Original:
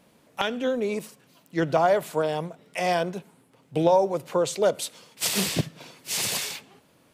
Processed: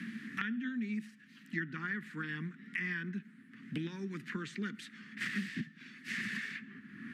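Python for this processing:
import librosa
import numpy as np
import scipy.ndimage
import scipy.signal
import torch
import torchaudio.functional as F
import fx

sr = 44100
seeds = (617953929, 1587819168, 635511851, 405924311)

y = fx.double_bandpass(x, sr, hz=630.0, octaves=3.0)
y = fx.band_shelf(y, sr, hz=680.0, db=-16.0, octaves=1.2)
y = fx.band_squash(y, sr, depth_pct=100)
y = y * librosa.db_to_amplitude(2.5)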